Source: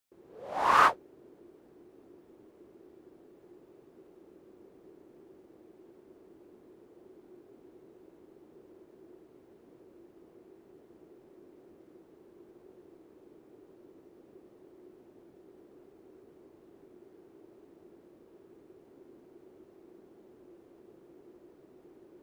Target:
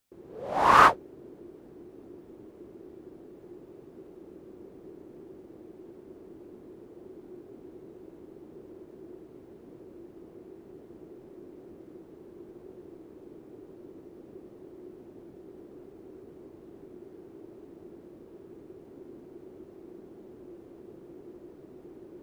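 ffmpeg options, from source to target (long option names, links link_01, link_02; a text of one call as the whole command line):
ffmpeg -i in.wav -af "lowshelf=frequency=360:gain=8,volume=4dB" out.wav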